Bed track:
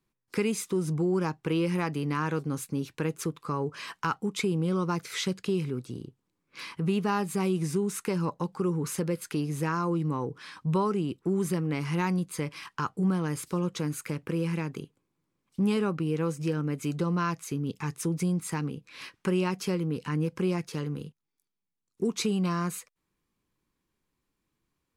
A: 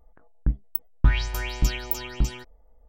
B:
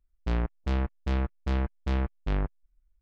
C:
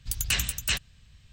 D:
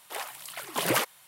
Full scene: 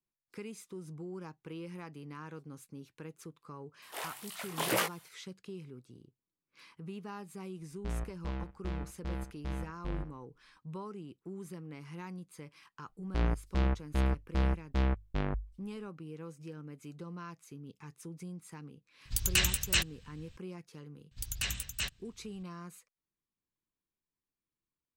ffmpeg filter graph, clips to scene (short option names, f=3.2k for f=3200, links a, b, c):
-filter_complex "[2:a]asplit=2[a][b];[3:a]asplit=2[c][d];[0:a]volume=-16.5dB[e];[4:a]flanger=delay=17.5:depth=7.2:speed=2[f];[a]aecho=1:1:67|134:0.251|0.0452[g];[b]bandreject=f=50:t=h:w=6,bandreject=f=100:t=h:w=6[h];[f]atrim=end=1.27,asetpts=PTS-STARTPTS,volume=-1.5dB,afade=t=in:d=0.004:c=hsin,afade=t=out:st=1.266:d=0.004:c=hsin,adelay=3820[i];[g]atrim=end=3.01,asetpts=PTS-STARTPTS,volume=-10dB,afade=t=in:d=0.004:c=hsin,afade=t=out:st=3.006:d=0.004:c=hsin,adelay=7580[j];[h]atrim=end=3.01,asetpts=PTS-STARTPTS,volume=-1.5dB,afade=t=in:d=0.004:c=hsin,afade=t=out:st=3.006:d=0.004:c=hsin,adelay=12880[k];[c]atrim=end=1.32,asetpts=PTS-STARTPTS,volume=-1dB,afade=t=in:d=0.004:c=hsin,afade=t=out:st=1.316:d=0.004:c=hsin,adelay=19050[l];[d]atrim=end=1.32,asetpts=PTS-STARTPTS,volume=-8.5dB,afade=t=in:d=0.004:c=hsin,afade=t=out:st=1.316:d=0.004:c=hsin,adelay=21110[m];[e][i][j][k][l][m]amix=inputs=6:normalize=0"